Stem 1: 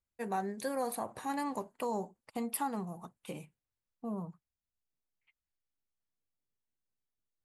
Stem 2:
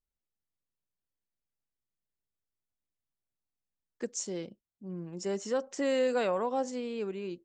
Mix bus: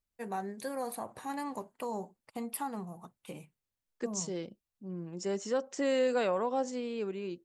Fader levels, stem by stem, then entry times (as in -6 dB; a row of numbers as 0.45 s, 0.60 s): -2.0 dB, -0.5 dB; 0.00 s, 0.00 s